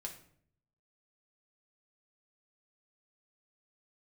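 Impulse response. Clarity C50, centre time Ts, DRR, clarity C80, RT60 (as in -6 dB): 9.5 dB, 15 ms, 1.0 dB, 13.0 dB, 0.60 s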